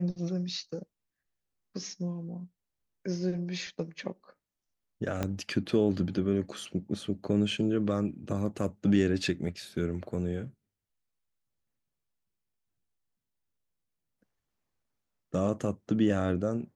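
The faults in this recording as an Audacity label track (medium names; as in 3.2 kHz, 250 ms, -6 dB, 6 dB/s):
5.230000	5.230000	pop -16 dBFS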